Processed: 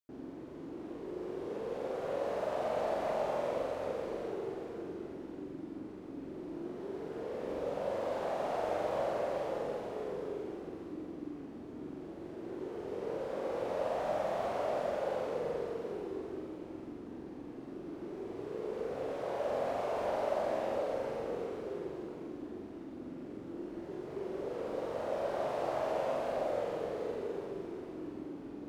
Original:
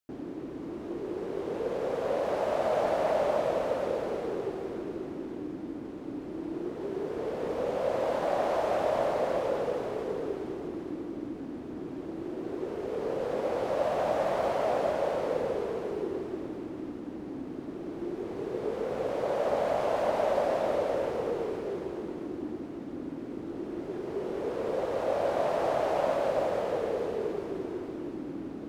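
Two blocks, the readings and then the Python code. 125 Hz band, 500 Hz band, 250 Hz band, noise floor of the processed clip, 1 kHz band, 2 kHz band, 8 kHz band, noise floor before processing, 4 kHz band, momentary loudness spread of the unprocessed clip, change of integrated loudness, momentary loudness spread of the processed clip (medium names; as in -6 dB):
-6.0 dB, -6.0 dB, -6.5 dB, -47 dBFS, -6.0 dB, -6.0 dB, no reading, -40 dBFS, -6.0 dB, 11 LU, -6.0 dB, 11 LU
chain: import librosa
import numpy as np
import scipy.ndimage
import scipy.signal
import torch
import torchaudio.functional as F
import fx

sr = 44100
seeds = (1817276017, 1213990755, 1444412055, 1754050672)

y = fx.room_flutter(x, sr, wall_m=7.6, rt60_s=0.7)
y = F.gain(torch.from_numpy(y), -8.5).numpy()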